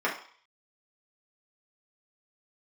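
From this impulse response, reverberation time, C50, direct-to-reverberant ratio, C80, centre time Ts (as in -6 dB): 0.50 s, 8.0 dB, -5.0 dB, 12.5 dB, 25 ms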